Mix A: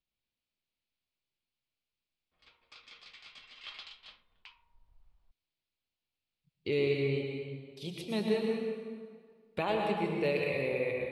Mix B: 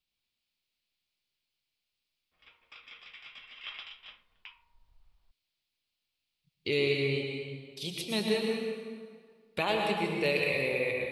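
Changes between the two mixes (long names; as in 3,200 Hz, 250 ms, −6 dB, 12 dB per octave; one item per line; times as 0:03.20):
background: add Savitzky-Golay smoothing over 25 samples
master: add high-shelf EQ 2,100 Hz +11.5 dB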